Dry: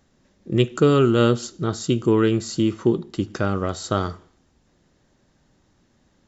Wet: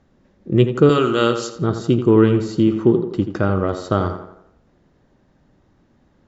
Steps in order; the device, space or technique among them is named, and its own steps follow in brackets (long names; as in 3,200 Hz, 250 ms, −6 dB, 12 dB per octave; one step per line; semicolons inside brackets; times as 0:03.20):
0:00.89–0:01.55: spectral tilt +4 dB per octave
tape delay 85 ms, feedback 51%, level −7.5 dB, low-pass 2,500 Hz
through cloth (low-pass filter 6,700 Hz 12 dB per octave; high-shelf EQ 2,600 Hz −12 dB)
level +4.5 dB